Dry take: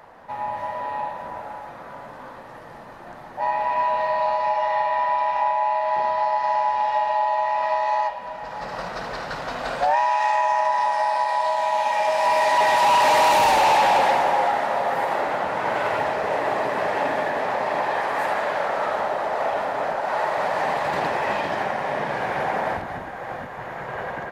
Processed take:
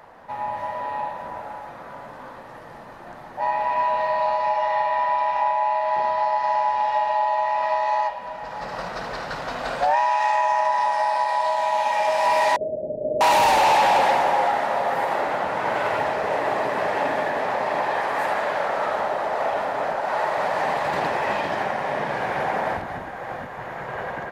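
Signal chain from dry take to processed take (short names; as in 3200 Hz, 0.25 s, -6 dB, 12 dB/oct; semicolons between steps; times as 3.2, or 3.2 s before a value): 12.56–13.21 steep low-pass 630 Hz 96 dB/oct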